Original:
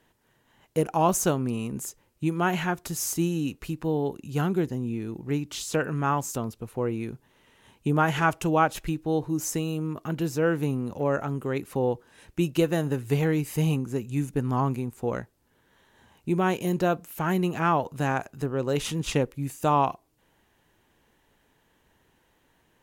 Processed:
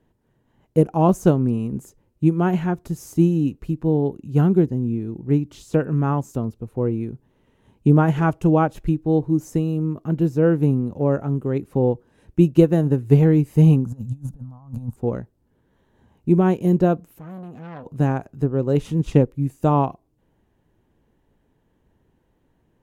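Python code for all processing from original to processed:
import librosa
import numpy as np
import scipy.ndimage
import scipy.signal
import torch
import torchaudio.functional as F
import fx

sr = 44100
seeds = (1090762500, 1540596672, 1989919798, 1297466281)

y = fx.chain(x, sr, fx.over_compress(threshold_db=-33.0, ratio=-0.5),
    fx.fixed_phaser(hz=900.0, stages=4), at=(13.85, 14.96))
y = fx.chain(y, sr, fx.comb_fb(f0_hz=250.0, decay_s=0.18, harmonics='all', damping=0.0, mix_pct=70),
    fx.transformer_sat(knee_hz=1700.0), at=(17.18, 17.86))
y = fx.tilt_shelf(y, sr, db=9.0, hz=760.0)
y = fx.upward_expand(y, sr, threshold_db=-28.0, expansion=1.5)
y = F.gain(torch.from_numpy(y), 4.5).numpy()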